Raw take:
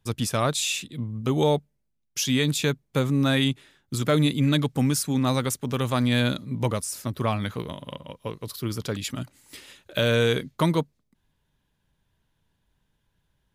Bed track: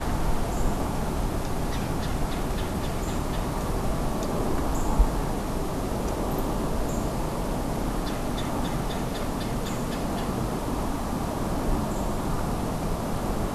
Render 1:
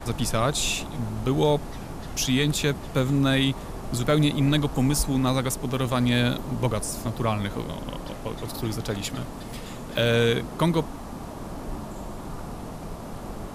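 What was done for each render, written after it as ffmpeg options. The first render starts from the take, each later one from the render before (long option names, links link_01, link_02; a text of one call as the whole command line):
ffmpeg -i in.wav -i bed.wav -filter_complex "[1:a]volume=-8dB[link_01];[0:a][link_01]amix=inputs=2:normalize=0" out.wav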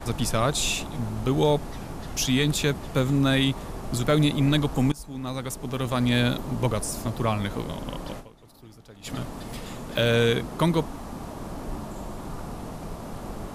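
ffmpeg -i in.wav -filter_complex "[0:a]asplit=4[link_01][link_02][link_03][link_04];[link_01]atrim=end=4.92,asetpts=PTS-STARTPTS,afade=type=out:start_time=4.916:duration=0.004:curve=hsin:silence=0.0944061[link_05];[link_02]atrim=start=4.92:end=8.51,asetpts=PTS-STARTPTS,afade=type=in:duration=1.23:silence=0.0944061,afade=type=out:start_time=3.27:duration=0.32:curve=exp:silence=0.105925[link_06];[link_03]atrim=start=8.51:end=8.77,asetpts=PTS-STARTPTS,volume=-19.5dB[link_07];[link_04]atrim=start=8.77,asetpts=PTS-STARTPTS,afade=type=in:duration=0.32:curve=exp:silence=0.105925[link_08];[link_05][link_06][link_07][link_08]concat=n=4:v=0:a=1" out.wav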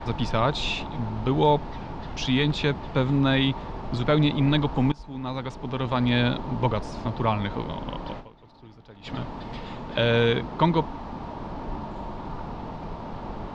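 ffmpeg -i in.wav -af "lowpass=frequency=4300:width=0.5412,lowpass=frequency=4300:width=1.3066,equalizer=frequency=910:width=6.5:gain=9" out.wav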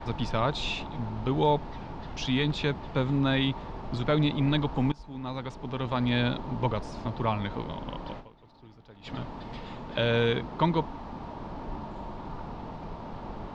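ffmpeg -i in.wav -af "volume=-4dB" out.wav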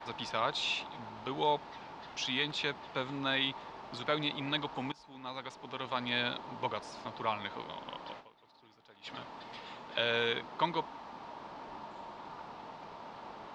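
ffmpeg -i in.wav -af "highpass=frequency=1100:poles=1" out.wav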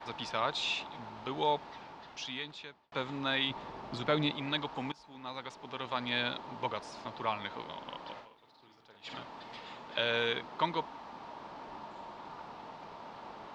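ffmpeg -i in.wav -filter_complex "[0:a]asettb=1/sr,asplit=3[link_01][link_02][link_03];[link_01]atrim=end=3.504[link_04];[link_02]atrim=start=3.5:end=4.32,asetpts=PTS-STARTPTS,afade=type=in:duration=0.004:curve=qsin,afade=type=out:start_time=0.816:duration=0.004:curve=qsin,lowshelf=frequency=430:gain=8[link_05];[link_03]atrim=start=4.316[link_06];[link_04][link_05]acrossfade=duration=0.004:curve1=hsin:curve2=qsin[link_07];[link_07][link_06]acrossfade=duration=0.004:curve1=qsin:curve2=hsin,asettb=1/sr,asplit=3[link_08][link_09][link_10];[link_08]atrim=end=8.124[link_11];[link_09]atrim=start=8.12:end=9.2,asetpts=PTS-STARTPTS,afade=type=in:duration=0.004:curve=qsin,afade=type=out:start_time=1.076:duration=0.004:curve=qsin,asplit=2[link_12][link_13];[link_13]adelay=49,volume=-5dB[link_14];[link_12][link_14]amix=inputs=2:normalize=0,atrim=end_sample=47628[link_15];[link_10]atrim=start=9.196[link_16];[link_11][link_15]acrossfade=duration=0.004:curve1=hsin:curve2=qsin[link_17];[link_17][link_16]acrossfade=duration=0.004:curve1=qsin:curve2=hsin,asplit=2[link_18][link_19];[link_18]atrim=end=2.92,asetpts=PTS-STARTPTS,afade=type=out:start_time=1.7:duration=1.22[link_20];[link_19]atrim=start=2.92,asetpts=PTS-STARTPTS,afade=type=in:duration=0.004:curve=hsin[link_21];[link_20][link_21]concat=n=2:v=0:a=1" out.wav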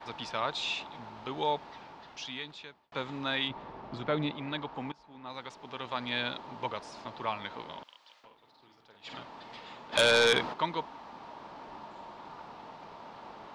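ffmpeg -i in.wav -filter_complex "[0:a]asettb=1/sr,asplit=3[link_01][link_02][link_03];[link_01]atrim=end=3.484[link_04];[link_02]atrim=start=3.48:end=5.3,asetpts=PTS-STARTPTS,afade=type=in:duration=0.004:curve=qsin,afade=type=out:start_time=1.816:duration=0.004:curve=qsin,lowpass=frequency=2200:poles=1[link_05];[link_03]atrim=start=5.296[link_06];[link_04][link_05]acrossfade=duration=0.004:curve1=hsin:curve2=qsin[link_07];[link_07][link_06]acrossfade=duration=0.004:curve1=qsin:curve2=hsin,asettb=1/sr,asplit=3[link_08][link_09][link_10];[link_08]atrim=end=7.834[link_11];[link_09]atrim=start=7.83:end=8.24,asetpts=PTS-STARTPTS,afade=type=in:duration=0.004:curve=qsin,afade=type=out:start_time=0.406:duration=0.004:curve=qsin,aderivative[link_12];[link_10]atrim=start=8.236[link_13];[link_11][link_12]acrossfade=duration=0.004:curve1=hsin:curve2=qsin[link_14];[link_14][link_13]acrossfade=duration=0.004:curve1=qsin:curve2=hsin,asplit=3[link_15][link_16][link_17];[link_15]afade=type=out:start_time=9.92:duration=0.02[link_18];[link_16]aeval=exprs='0.141*sin(PI/2*2.24*val(0)/0.141)':channel_layout=same,afade=type=in:start_time=9.92:duration=0.02,afade=type=out:start_time=10.52:duration=0.02[link_19];[link_17]afade=type=in:start_time=10.52:duration=0.02[link_20];[link_18][link_19][link_20]amix=inputs=3:normalize=0" out.wav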